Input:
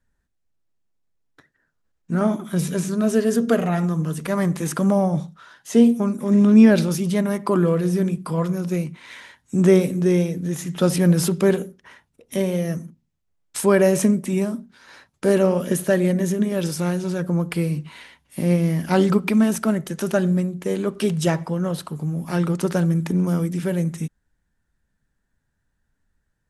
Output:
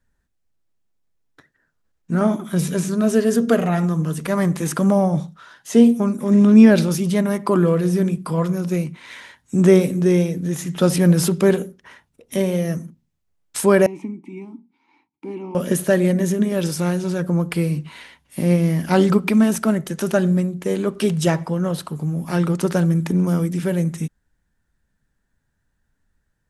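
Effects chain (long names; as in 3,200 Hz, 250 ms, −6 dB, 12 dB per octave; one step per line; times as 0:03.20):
0:13.86–0:15.55: formant filter u
level +2 dB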